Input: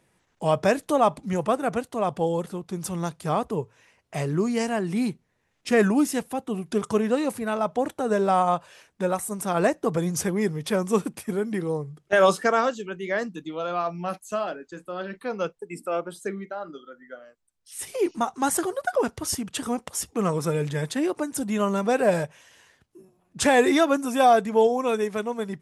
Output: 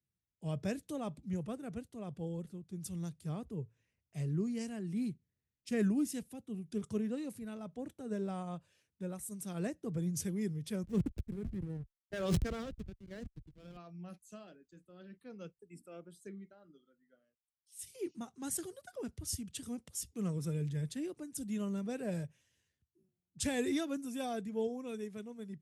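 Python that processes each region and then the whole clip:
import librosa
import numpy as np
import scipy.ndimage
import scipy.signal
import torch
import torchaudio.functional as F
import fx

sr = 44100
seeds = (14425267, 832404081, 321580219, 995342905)

y = fx.chain(x, sr, fx.backlash(play_db=-22.5),
    fx.sustainer(db_per_s=46.0), at=(10.83, 13.77))
y = scipy.signal.sosfilt(scipy.signal.butter(2, 61.0, 'highpass', fs=sr, output='sos'), y)
y = fx.tone_stack(y, sr, knobs='10-0-1')
y = fx.band_widen(y, sr, depth_pct=40)
y = y * librosa.db_to_amplitude(6.5)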